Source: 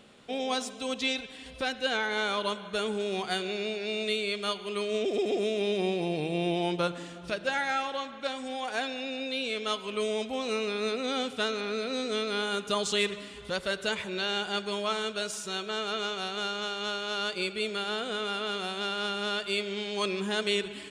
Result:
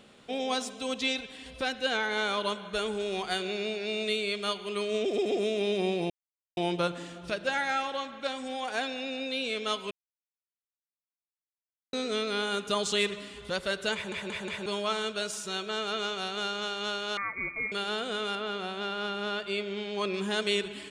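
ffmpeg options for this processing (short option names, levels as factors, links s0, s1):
-filter_complex "[0:a]asplit=3[s0][s1][s2];[s0]afade=t=out:st=2.73:d=0.02[s3];[s1]asubboost=boost=6.5:cutoff=62,afade=t=in:st=2.73:d=0.02,afade=t=out:st=3.39:d=0.02[s4];[s2]afade=t=in:st=3.39:d=0.02[s5];[s3][s4][s5]amix=inputs=3:normalize=0,asettb=1/sr,asplit=3[s6][s7][s8];[s6]atrim=end=17.174[s9];[s7]atrim=start=17.17:end=17.72,asetpts=PTS-STARTPTS,afade=t=in:d=0.004:c=qsin,afade=t=out:st=0.546:d=0.004:c=qsin,lowpass=f=2200:t=q:w=0.5098,lowpass=f=2200:t=q:w=0.6013,lowpass=f=2200:t=q:w=0.9,lowpass=f=2200:t=q:w=2.563,afreqshift=-2600[s10];[s8]atrim=start=17.716[s11];[s9][s10]acrossfade=d=0.004:c1=hsin:c2=qsin[s12];[s12][s11]acrossfade=d=0.004:c1=qsin:c2=hsin,asettb=1/sr,asplit=3[s13][s14][s15];[s13]atrim=end=18.354[s16];[s14]atrim=start=18.35:end=20.14,asetpts=PTS-STARTPTS,afade=t=in:d=0.004:c=qsin,afade=t=out:st=1.786:d=0.004:c=qsin,lowpass=f=2500:p=1[s17];[s15]atrim=start=20.136[s18];[s16][s17]acrossfade=d=0.004:c1=hsin:c2=qsin[s19];[s19][s18]acrossfade=d=0.004:c1=qsin:c2=hsin,asplit=9[s20][s21][s22][s23][s24][s25][s26][s27][s28];[s20]atrim=end=6.1,asetpts=PTS-STARTPTS,afade=t=out:st=6.096:d=0.004:c=hsin[s29];[s21]atrim=start=6.1:end=6.57,asetpts=PTS-STARTPTS,volume=0[s30];[s22]atrim=start=6.57:end=9.91,asetpts=PTS-STARTPTS,afade=t=in:d=0.004:c=hsin,afade=t=out:st=3.336:d=0.004:c=hsin[s31];[s23]atrim=start=9.91:end=11.93,asetpts=PTS-STARTPTS,volume=0[s32];[s24]atrim=start=11.93:end=14.122,asetpts=PTS-STARTPTS,afade=t=in:d=0.004:c=hsin[s33];[s25]atrim=start=13.938:end=14.122[s34];[s26]atrim=start=13.938:end=14.122[s35];[s27]atrim=start=13.938:end=14.122[s36];[s28]atrim=start=14.658[s37];[s29][s30][s31][s32][s33]concat=n=5:v=0:a=1[s38];[s38][s34]acrossfade=d=0.004:c1=hsin:c2=hsin[s39];[s39][s35]acrossfade=d=0.004:c1=hsin:c2=hsin[s40];[s40][s36]acrossfade=d=0.004:c1=hsin:c2=hsin[s41];[s41][s37]acrossfade=d=0.004:c1=hsin:c2=hsin"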